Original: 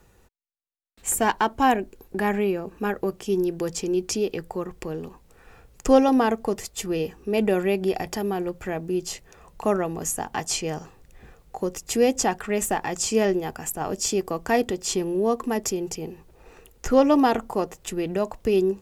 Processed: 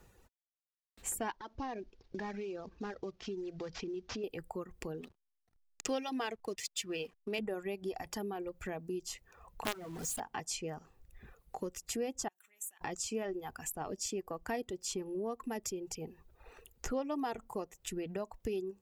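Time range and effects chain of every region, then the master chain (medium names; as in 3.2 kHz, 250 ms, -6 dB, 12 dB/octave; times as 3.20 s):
1.33–4.24 s: CVSD coder 32 kbps + compression 2:1, threshold -31 dBFS
5.01–7.39 s: expander -47 dBFS + frequency weighting D + hysteresis with a dead band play -35 dBFS
9.65–10.20 s: low-pass 9.2 kHz + companded quantiser 2-bit + hum notches 50/100/150/200/250 Hz
12.28–12.81 s: compression 16:1, threshold -30 dBFS + Butterworth band-stop 4.9 kHz, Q 4.5 + differentiator
whole clip: reverb removal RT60 1.2 s; compression 2.5:1, threshold -35 dBFS; trim -4.5 dB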